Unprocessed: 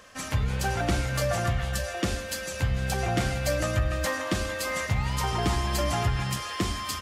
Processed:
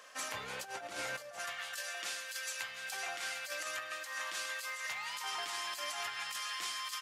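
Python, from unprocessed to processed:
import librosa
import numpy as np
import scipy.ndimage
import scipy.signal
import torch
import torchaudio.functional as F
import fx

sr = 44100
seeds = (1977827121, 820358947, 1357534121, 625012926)

y = fx.highpass(x, sr, hz=fx.steps((0.0, 550.0), (1.39, 1300.0)), slope=12)
y = fx.over_compress(y, sr, threshold_db=-35.0, ratio=-0.5)
y = y * librosa.db_to_amplitude(-4.5)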